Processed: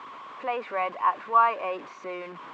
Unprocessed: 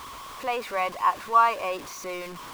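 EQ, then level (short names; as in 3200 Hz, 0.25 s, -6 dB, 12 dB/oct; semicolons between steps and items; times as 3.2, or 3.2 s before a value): HPF 91 Hz; Chebyshev low-pass 7500 Hz, order 4; three-band isolator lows -20 dB, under 160 Hz, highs -22 dB, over 2800 Hz; 0.0 dB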